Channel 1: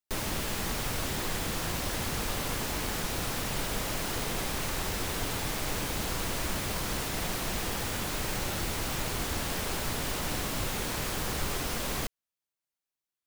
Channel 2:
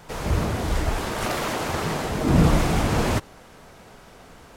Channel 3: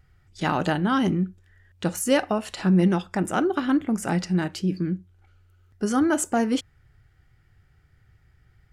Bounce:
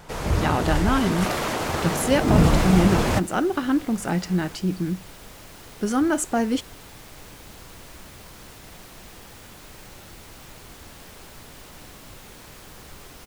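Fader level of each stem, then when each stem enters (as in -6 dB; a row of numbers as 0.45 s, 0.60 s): -11.5 dB, +0.5 dB, 0.0 dB; 1.50 s, 0.00 s, 0.00 s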